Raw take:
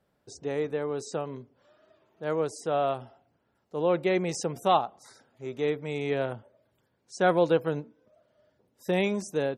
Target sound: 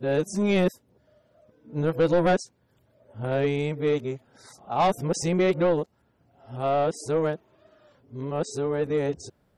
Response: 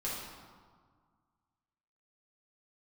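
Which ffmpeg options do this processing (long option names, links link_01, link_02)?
-af "areverse,asoftclip=type=tanh:threshold=-19dB,lowshelf=frequency=180:gain=9,volume=3.5dB"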